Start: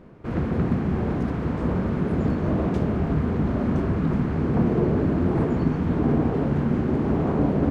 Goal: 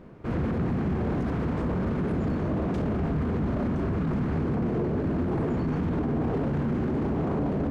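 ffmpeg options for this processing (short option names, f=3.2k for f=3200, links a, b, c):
-af "alimiter=limit=-20.5dB:level=0:latency=1:release=12"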